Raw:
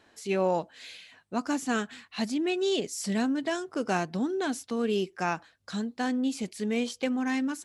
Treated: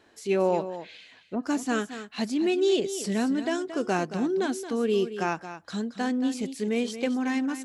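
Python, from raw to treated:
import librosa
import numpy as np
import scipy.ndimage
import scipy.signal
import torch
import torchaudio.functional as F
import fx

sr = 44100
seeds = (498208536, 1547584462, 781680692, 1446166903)

y = fx.env_lowpass_down(x, sr, base_hz=590.0, full_db=-30.5, at=(0.75, 1.42), fade=0.02)
y = fx.peak_eq(y, sr, hz=380.0, db=4.5, octaves=0.81)
y = y + 10.0 ** (-11.5 / 20.0) * np.pad(y, (int(225 * sr / 1000.0), 0))[:len(y)]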